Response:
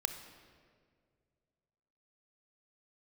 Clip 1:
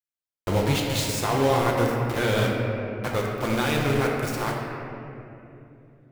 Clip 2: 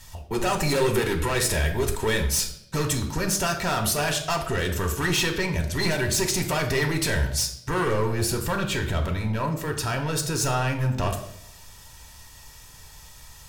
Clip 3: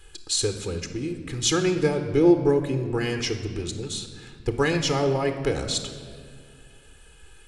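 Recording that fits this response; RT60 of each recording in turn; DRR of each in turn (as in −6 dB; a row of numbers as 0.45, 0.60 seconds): 3; 2.8, 0.70, 2.1 seconds; −3.0, 3.5, 7.5 decibels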